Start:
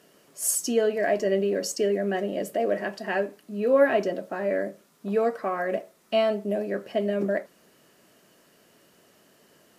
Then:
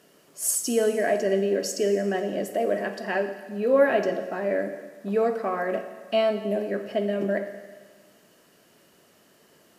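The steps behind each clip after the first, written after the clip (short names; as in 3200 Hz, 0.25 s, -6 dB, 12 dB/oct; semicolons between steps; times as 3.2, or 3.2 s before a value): Schroeder reverb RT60 1.5 s, DRR 8.5 dB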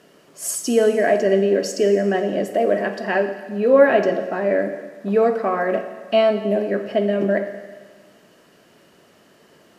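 high shelf 7000 Hz -11.5 dB; gain +6.5 dB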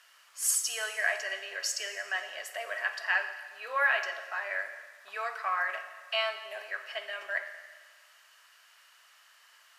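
HPF 1100 Hz 24 dB/oct; gain -1.5 dB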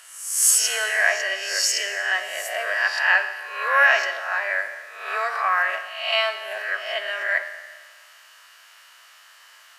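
spectral swells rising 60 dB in 0.73 s; gain +7.5 dB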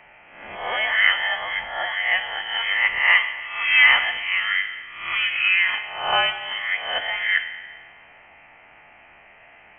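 inverted band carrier 3700 Hz; gain +2 dB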